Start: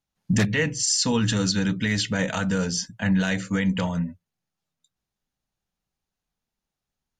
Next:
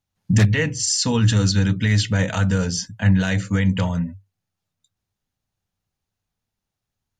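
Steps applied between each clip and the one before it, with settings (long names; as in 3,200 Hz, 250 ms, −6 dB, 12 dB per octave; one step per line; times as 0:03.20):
parametric band 98 Hz +14.5 dB 0.39 octaves
level +1.5 dB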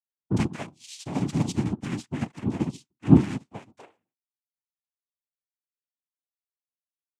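high-pass filter sweep 180 Hz → 1,800 Hz, 0:03.32–0:04.60
cochlear-implant simulation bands 4
expander for the loud parts 2.5 to 1, over −34 dBFS
level −1 dB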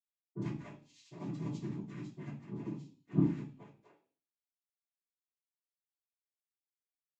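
convolution reverb RT60 0.45 s, pre-delay 46 ms
level −6.5 dB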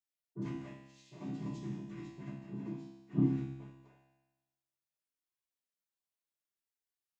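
tuned comb filter 67 Hz, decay 1.1 s, harmonics all, mix 90%
level +11.5 dB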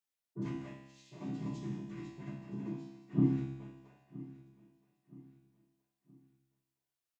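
repeating echo 971 ms, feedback 40%, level −18.5 dB
level +1 dB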